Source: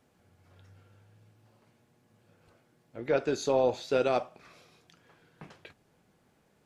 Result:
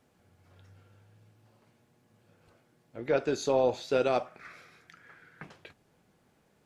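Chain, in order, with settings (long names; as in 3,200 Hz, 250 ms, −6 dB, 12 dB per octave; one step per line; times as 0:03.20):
0:04.26–0:05.43: flat-topped bell 1,700 Hz +11.5 dB 1 octave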